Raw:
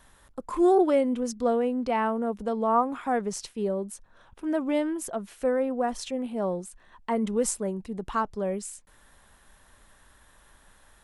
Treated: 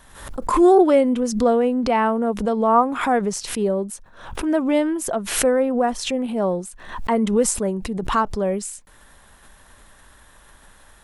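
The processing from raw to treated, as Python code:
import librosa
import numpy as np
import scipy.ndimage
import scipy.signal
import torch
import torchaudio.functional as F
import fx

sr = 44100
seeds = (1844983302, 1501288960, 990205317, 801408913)

y = fx.pre_swell(x, sr, db_per_s=77.0)
y = F.gain(torch.from_numpy(y), 7.0).numpy()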